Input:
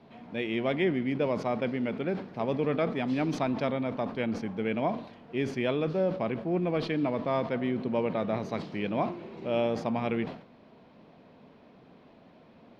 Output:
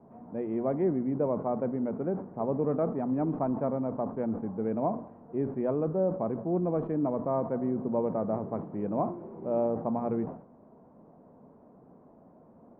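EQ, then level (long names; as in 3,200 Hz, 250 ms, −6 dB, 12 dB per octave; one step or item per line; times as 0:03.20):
low-pass filter 1,100 Hz 24 dB per octave
mains-hum notches 60/120 Hz
0.0 dB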